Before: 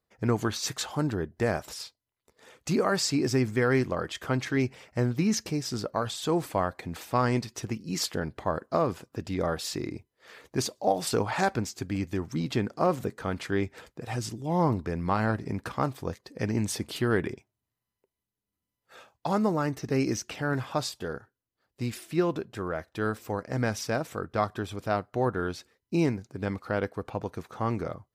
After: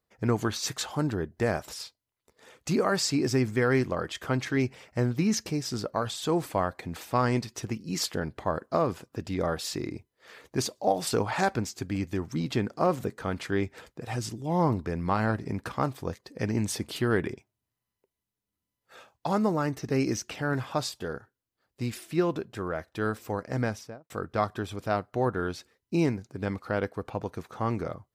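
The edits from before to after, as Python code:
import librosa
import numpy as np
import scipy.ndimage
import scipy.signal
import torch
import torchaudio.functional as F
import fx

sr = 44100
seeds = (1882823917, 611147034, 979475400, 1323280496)

y = fx.studio_fade_out(x, sr, start_s=23.55, length_s=0.55)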